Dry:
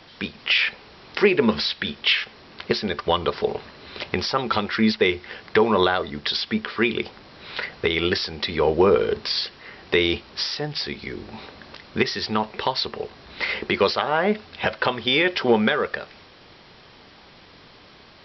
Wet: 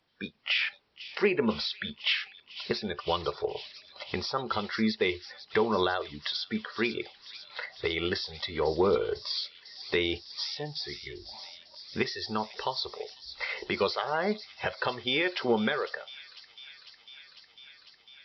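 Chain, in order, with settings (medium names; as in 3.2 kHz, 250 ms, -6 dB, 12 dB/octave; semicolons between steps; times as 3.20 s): spectral noise reduction 18 dB; feedback echo behind a high-pass 500 ms, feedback 81%, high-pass 4.4 kHz, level -8 dB; trim -8 dB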